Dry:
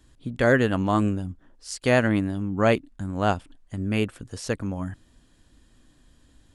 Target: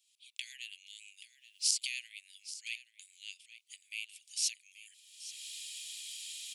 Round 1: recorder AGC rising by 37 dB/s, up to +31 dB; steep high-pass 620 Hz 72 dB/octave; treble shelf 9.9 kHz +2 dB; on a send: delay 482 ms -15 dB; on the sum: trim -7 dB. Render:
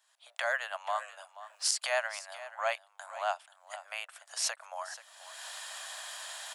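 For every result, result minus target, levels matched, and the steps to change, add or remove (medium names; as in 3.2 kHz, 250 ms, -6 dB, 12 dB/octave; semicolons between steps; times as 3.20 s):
echo 347 ms early; 2 kHz band +7.0 dB
change: delay 829 ms -15 dB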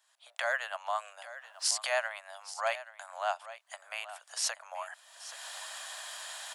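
2 kHz band +7.0 dB
change: steep high-pass 2.3 kHz 72 dB/octave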